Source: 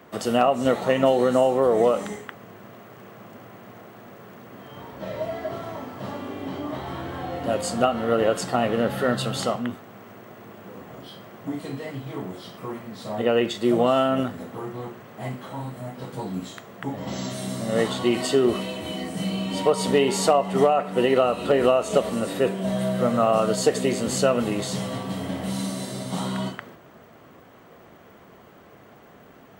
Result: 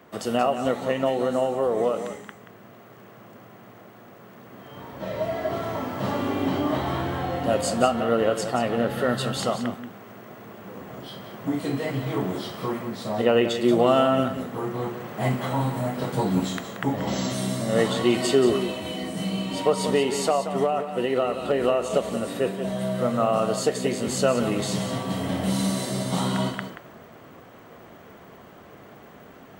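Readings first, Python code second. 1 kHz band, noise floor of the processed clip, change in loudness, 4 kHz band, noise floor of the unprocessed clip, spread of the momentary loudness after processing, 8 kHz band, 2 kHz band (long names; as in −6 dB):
−1.0 dB, −48 dBFS, −1.0 dB, 0.0 dB, −50 dBFS, 13 LU, −0.5 dB, 0.0 dB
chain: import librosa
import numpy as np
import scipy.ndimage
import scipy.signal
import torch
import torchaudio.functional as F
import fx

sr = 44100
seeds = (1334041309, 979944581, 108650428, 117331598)

y = fx.rider(x, sr, range_db=10, speed_s=2.0)
y = y + 10.0 ** (-10.0 / 20.0) * np.pad(y, (int(180 * sr / 1000.0), 0))[:len(y)]
y = y * 10.0 ** (-1.5 / 20.0)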